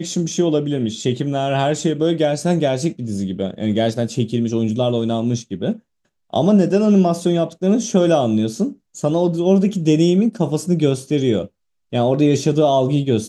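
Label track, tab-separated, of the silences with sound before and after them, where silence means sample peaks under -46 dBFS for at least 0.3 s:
5.800000	6.300000	silence
11.480000	11.920000	silence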